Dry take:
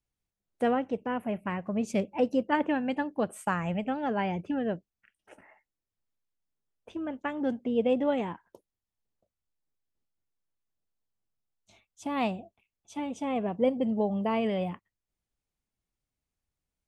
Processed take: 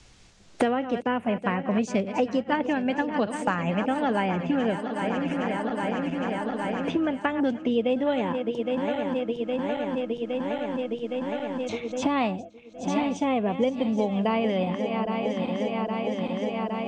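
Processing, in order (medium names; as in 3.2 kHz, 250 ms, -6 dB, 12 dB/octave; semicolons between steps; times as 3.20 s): backward echo that repeats 407 ms, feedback 76%, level -12.5 dB; Bessel low-pass 4.9 kHz, order 8; treble shelf 3.3 kHz +9 dB; three bands compressed up and down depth 100%; trim +4 dB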